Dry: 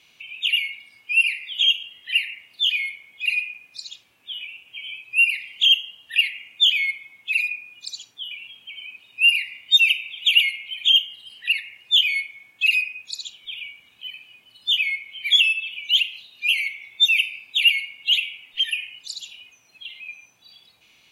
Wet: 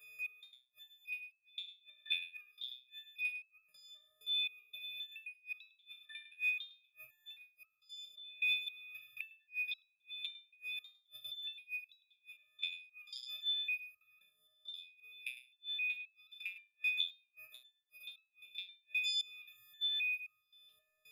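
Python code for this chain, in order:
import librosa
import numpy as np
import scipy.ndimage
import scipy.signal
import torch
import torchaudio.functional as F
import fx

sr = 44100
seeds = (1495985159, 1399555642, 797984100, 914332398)

p1 = fx.freq_snap(x, sr, grid_st=6)
p2 = fx.level_steps(p1, sr, step_db=19)
p3 = fx.fixed_phaser(p2, sr, hz=1300.0, stages=8)
p4 = fx.gate_flip(p3, sr, shuts_db=-22.0, range_db=-42)
p5 = fx.filter_lfo_notch(p4, sr, shape='saw_down', hz=0.29, low_hz=270.0, high_hz=4100.0, q=0.75)
p6 = p5 + fx.echo_single(p5, sr, ms=104, db=-12.5, dry=0)
p7 = fx.resonator_held(p6, sr, hz=3.8, low_hz=86.0, high_hz=1300.0)
y = p7 * 10.0 ** (12.5 / 20.0)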